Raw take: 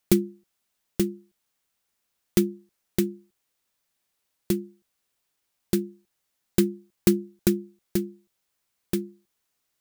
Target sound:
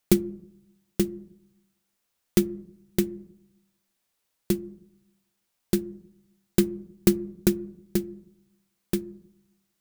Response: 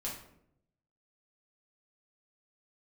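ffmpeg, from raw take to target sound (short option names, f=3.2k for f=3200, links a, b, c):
-filter_complex "[0:a]asplit=2[a][b];[b]lowpass=1.3k[c];[1:a]atrim=start_sample=2205[d];[c][d]afir=irnorm=-1:irlink=0,volume=-13.5dB[e];[a][e]amix=inputs=2:normalize=0"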